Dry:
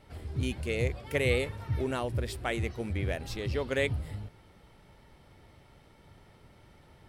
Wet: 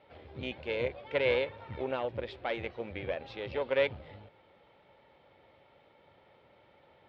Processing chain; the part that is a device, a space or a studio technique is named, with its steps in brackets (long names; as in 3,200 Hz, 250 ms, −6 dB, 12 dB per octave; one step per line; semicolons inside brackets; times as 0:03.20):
guitar amplifier (tube saturation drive 21 dB, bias 0.7; bass and treble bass −9 dB, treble −8 dB; loudspeaker in its box 75–4,400 Hz, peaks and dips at 540 Hz +9 dB, 840 Hz +4 dB, 2,400 Hz +4 dB, 3,500 Hz +5 dB)